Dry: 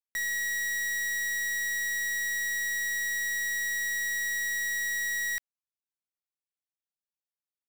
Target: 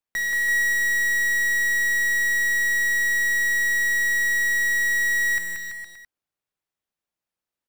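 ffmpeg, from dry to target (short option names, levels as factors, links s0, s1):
-filter_complex "[0:a]highshelf=f=3000:g=-9,asplit=2[s0][s1];[s1]acrusher=bits=4:mode=log:mix=0:aa=0.000001,volume=0.251[s2];[s0][s2]amix=inputs=2:normalize=0,aecho=1:1:180|333|463|573.6|667.6:0.631|0.398|0.251|0.158|0.1,volume=2.24"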